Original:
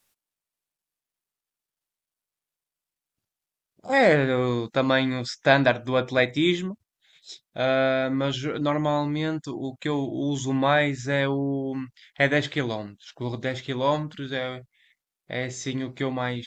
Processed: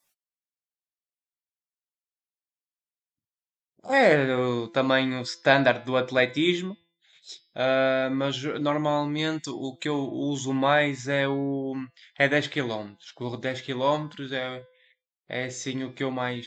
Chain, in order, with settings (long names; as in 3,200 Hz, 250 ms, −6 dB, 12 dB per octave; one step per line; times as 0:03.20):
low-shelf EQ 100 Hz −11.5 dB
hum removal 169.3 Hz, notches 31
noise reduction from a noise print of the clip's start 18 dB
0:09.18–0:09.85: high-shelf EQ 2,700 Hz +10.5 dB